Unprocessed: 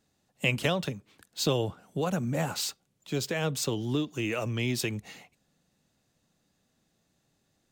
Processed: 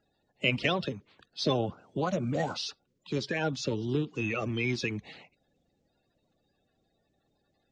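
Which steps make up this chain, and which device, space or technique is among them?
clip after many re-uploads (LPF 5300 Hz 24 dB/oct; bin magnitudes rounded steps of 30 dB)

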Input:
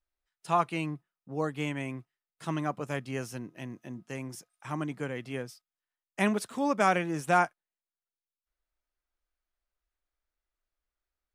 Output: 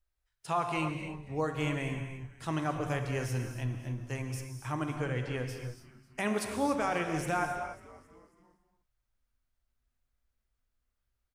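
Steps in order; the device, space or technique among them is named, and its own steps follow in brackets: 4.95–5.38 LPF 7300 Hz; car stereo with a boomy subwoofer (resonant low shelf 140 Hz +7.5 dB, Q 3; limiter -20.5 dBFS, peak gain reduction 8.5 dB); frequency-shifting echo 0.272 s, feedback 49%, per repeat -130 Hz, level -17.5 dB; non-linear reverb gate 0.32 s flat, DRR 4.5 dB

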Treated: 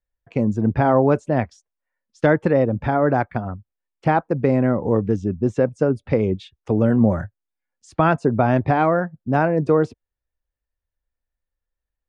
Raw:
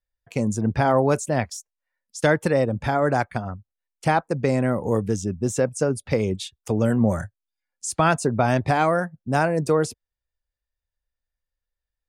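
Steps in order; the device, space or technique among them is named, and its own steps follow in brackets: phone in a pocket (LPF 3200 Hz 12 dB/oct; bell 300 Hz +3 dB 0.77 oct; high shelf 2500 Hz -8.5 dB); gain +2.5 dB

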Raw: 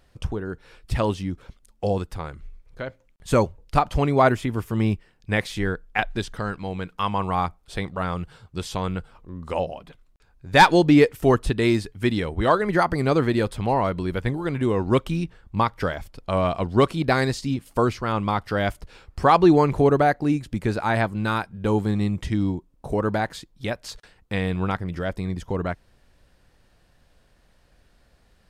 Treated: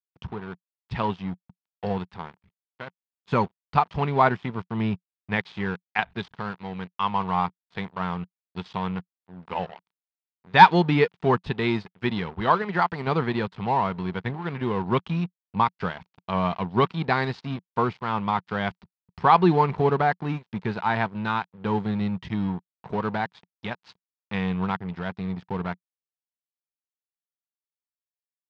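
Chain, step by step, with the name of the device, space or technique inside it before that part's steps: 12.62–13.07 low shelf 350 Hz -5 dB; blown loudspeaker (crossover distortion -36 dBFS; speaker cabinet 120–4200 Hz, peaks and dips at 180 Hz +6 dB, 300 Hz -9 dB, 570 Hz -8 dB, 930 Hz +6 dB); gain -1 dB

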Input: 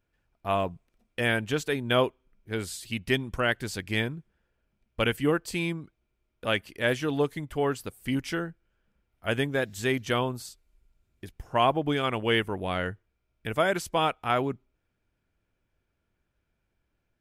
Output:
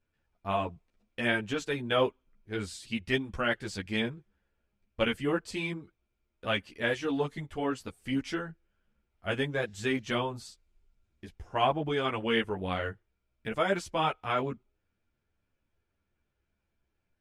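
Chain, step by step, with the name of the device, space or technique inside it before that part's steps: string-machine ensemble chorus (ensemble effect; LPF 7500 Hz 12 dB/oct)

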